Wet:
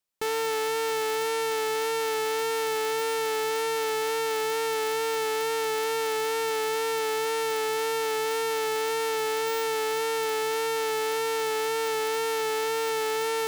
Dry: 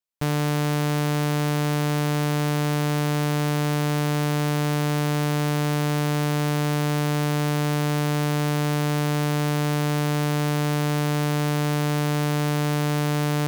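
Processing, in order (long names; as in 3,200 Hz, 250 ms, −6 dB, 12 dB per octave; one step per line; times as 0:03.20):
wrap-around overflow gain 27.5 dB
tape wow and flutter 25 cents
level +5 dB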